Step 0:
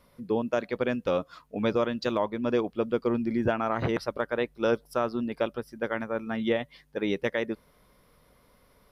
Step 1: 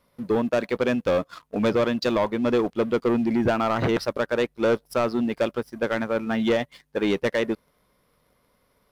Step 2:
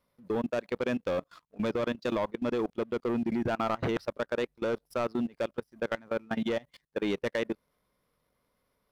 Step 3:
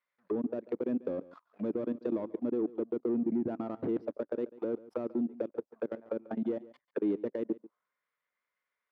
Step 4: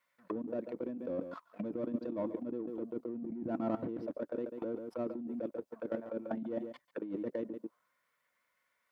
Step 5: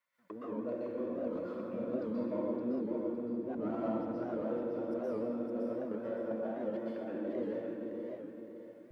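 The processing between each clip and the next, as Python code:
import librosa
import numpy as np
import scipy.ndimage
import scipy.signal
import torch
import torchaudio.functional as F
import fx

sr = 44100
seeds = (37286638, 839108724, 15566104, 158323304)

y1 = fx.low_shelf(x, sr, hz=63.0, db=-7.0)
y1 = fx.leveller(y1, sr, passes=2)
y2 = fx.level_steps(y1, sr, step_db=24)
y2 = y2 * librosa.db_to_amplitude(-4.5)
y3 = fx.leveller(y2, sr, passes=1)
y3 = fx.auto_wah(y3, sr, base_hz=300.0, top_hz=1900.0, q=2.2, full_db=-25.5, direction='down')
y3 = y3 + 10.0 ** (-19.0 / 20.0) * np.pad(y3, (int(141 * sr / 1000.0), 0))[:len(y3)]
y4 = fx.notch_comb(y3, sr, f0_hz=410.0)
y4 = fx.over_compress(y4, sr, threshold_db=-40.0, ratio=-1.0)
y4 = y4 * librosa.db_to_amplitude(3.0)
y5 = fx.echo_feedback(y4, sr, ms=561, feedback_pct=37, wet_db=-5)
y5 = fx.rev_plate(y5, sr, seeds[0], rt60_s=1.5, hf_ratio=0.8, predelay_ms=110, drr_db=-8.0)
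y5 = fx.record_warp(y5, sr, rpm=78.0, depth_cents=160.0)
y5 = y5 * librosa.db_to_amplitude(-8.0)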